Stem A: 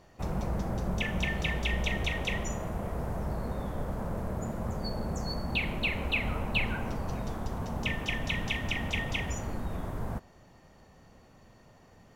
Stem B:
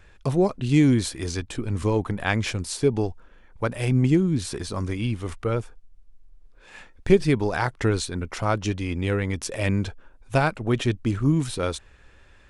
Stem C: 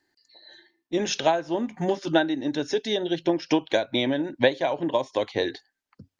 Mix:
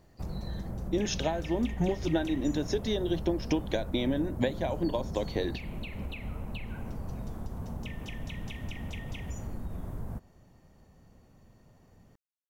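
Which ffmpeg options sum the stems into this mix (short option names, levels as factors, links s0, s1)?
-filter_complex "[0:a]acompressor=threshold=0.0251:ratio=6,volume=0.335[s0];[2:a]acompressor=threshold=0.0355:ratio=2.5,volume=0.562[s1];[s0][s1]amix=inputs=2:normalize=0,lowshelf=f=420:g=10.5,highshelf=f=8100:g=11"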